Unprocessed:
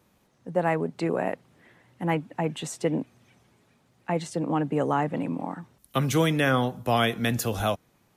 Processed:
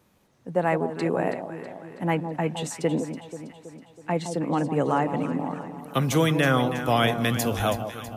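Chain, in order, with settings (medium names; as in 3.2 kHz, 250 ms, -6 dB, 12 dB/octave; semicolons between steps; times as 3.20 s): echo whose repeats swap between lows and highs 162 ms, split 1 kHz, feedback 73%, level -8 dB; trim +1 dB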